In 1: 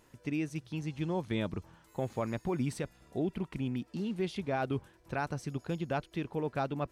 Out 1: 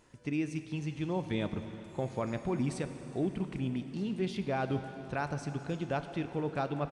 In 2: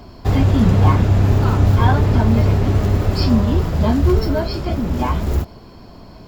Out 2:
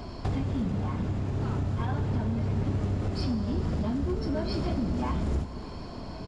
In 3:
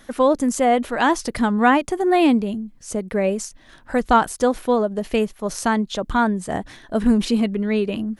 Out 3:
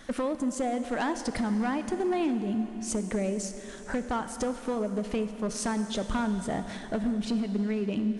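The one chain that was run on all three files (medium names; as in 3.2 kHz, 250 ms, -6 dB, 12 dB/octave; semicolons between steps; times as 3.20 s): dynamic bell 220 Hz, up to +5 dB, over -31 dBFS, Q 0.9; compression 16:1, threshold -25 dBFS; overload inside the chain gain 23.5 dB; plate-style reverb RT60 3.8 s, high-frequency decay 0.95×, DRR 8.5 dB; resampled via 22.05 kHz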